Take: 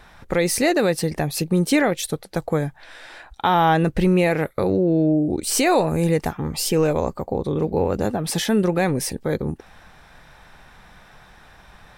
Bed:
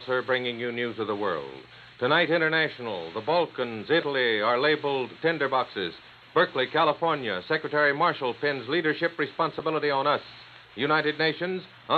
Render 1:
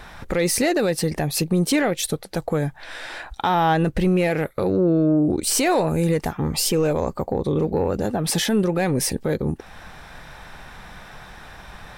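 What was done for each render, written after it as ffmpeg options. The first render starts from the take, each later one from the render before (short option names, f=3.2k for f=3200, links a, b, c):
-af "acontrast=81,alimiter=limit=-12dB:level=0:latency=1:release=388"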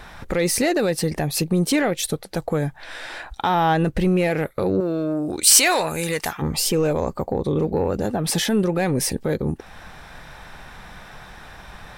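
-filter_complex "[0:a]asettb=1/sr,asplit=3[a][b][c];[a]atrim=end=4.804[d];[b]atrim=start=4.8:end=6.42,asetpts=PTS-STARTPTS,afade=t=in:d=0.004:c=qsin,afade=t=out:st=1.616:d=0.004:c=qsin,tiltshelf=f=740:g=-9.5[e];[c]atrim=start=6.416[f];[d][e]acrossfade=d=0.004:c1=hsin:c2=qsin[g];[g][f]acrossfade=d=0.004:c1=qsin:c2=hsin"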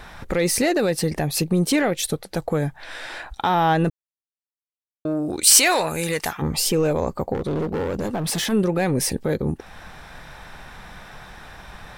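-filter_complex "[0:a]asplit=3[a][b][c];[a]afade=t=out:st=7.33:d=0.02[d];[b]asoftclip=type=hard:threshold=-21dB,afade=t=in:st=7.33:d=0.02,afade=t=out:st=8.51:d=0.02[e];[c]afade=t=in:st=8.51:d=0.02[f];[d][e][f]amix=inputs=3:normalize=0,asplit=3[g][h][i];[g]atrim=end=3.9,asetpts=PTS-STARTPTS,afade=t=out:st=3.896:d=0.004:c=hsin[j];[h]atrim=start=3.9:end=5.05,asetpts=PTS-STARTPTS,volume=0[k];[i]atrim=start=5.05,asetpts=PTS-STARTPTS,afade=t=in:d=0.004:c=hsin[l];[j][k][l]concat=n=3:v=0:a=1"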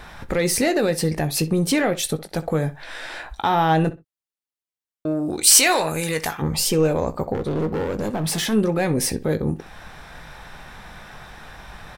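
-filter_complex "[0:a]asplit=2[a][b];[b]adelay=19,volume=-11.5dB[c];[a][c]amix=inputs=2:normalize=0,asplit=2[d][e];[e]adelay=63,lowpass=f=3.9k:p=1,volume=-16dB,asplit=2[f][g];[g]adelay=63,lowpass=f=3.9k:p=1,volume=0.19[h];[d][f][h]amix=inputs=3:normalize=0"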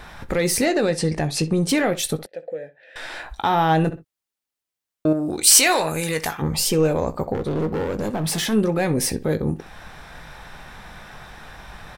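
-filter_complex "[0:a]asettb=1/sr,asplit=3[a][b][c];[a]atrim=end=0.654[d];[b]atrim=start=0.65:end=1.69,asetpts=PTS-STARTPTS,afade=t=in:d=0.004:c=qsin,afade=t=out:st=1.036:d=0.004:c=qsin,lowpass=f=9.1k:w=0.5412,lowpass=f=9.1k:w=1.3066[e];[c]atrim=start=1.686[f];[d][e]acrossfade=d=0.004:c1=hsin:c2=qsin[g];[g][f]acrossfade=d=0.004:c1=qsin:c2=hsin,asettb=1/sr,asplit=3[h][i][j];[h]atrim=end=2.264[k];[i]atrim=start=2.26:end=2.96,asetpts=PTS-STARTPTS,afade=t=in:d=0.004:c=qsin,afade=t=out:st=0.696:d=0.004:c=qsin,asplit=3[l][m][n];[l]bandpass=f=530:t=q:w=8,volume=0dB[o];[m]bandpass=f=1.84k:t=q:w=8,volume=-6dB[p];[n]bandpass=f=2.48k:t=q:w=8,volume=-9dB[q];[o][p][q]amix=inputs=3:normalize=0[r];[j]atrim=start=2.956[s];[k][r]acrossfade=d=0.004:c1=hsin:c2=qsin[t];[t][s]acrossfade=d=0.004:c1=qsin:c2=hsin,asettb=1/sr,asplit=3[u][v][w];[u]atrim=end=3.924[x];[v]atrim=start=3.92:end=5.13,asetpts=PTS-STARTPTS,afade=t=in:d=0.004:c=qsin,afade=t=out:st=1.206:d=0.004:c=qsin,acontrast=52[y];[w]atrim=start=5.126[z];[x][y]acrossfade=d=0.004:c1=hsin:c2=qsin[aa];[aa][z]acrossfade=d=0.004:c1=qsin:c2=hsin"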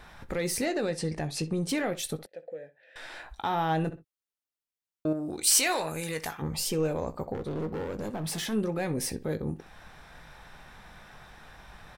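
-af "volume=-9.5dB"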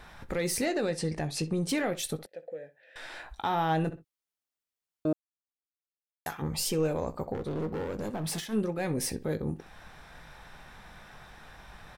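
-filter_complex "[0:a]asplit=3[a][b][c];[a]afade=t=out:st=8.39:d=0.02[d];[b]agate=range=-33dB:threshold=-29dB:ratio=3:release=100:detection=peak,afade=t=in:st=8.39:d=0.02,afade=t=out:st=8.83:d=0.02[e];[c]afade=t=in:st=8.83:d=0.02[f];[d][e][f]amix=inputs=3:normalize=0,asplit=3[g][h][i];[g]atrim=end=5.13,asetpts=PTS-STARTPTS,afade=t=out:st=5.126:d=0.004:c=hsin[j];[h]atrim=start=5.13:end=6.26,asetpts=PTS-STARTPTS,volume=0[k];[i]atrim=start=6.26,asetpts=PTS-STARTPTS,afade=t=in:d=0.004:c=hsin[l];[j][k][l]concat=n=3:v=0:a=1"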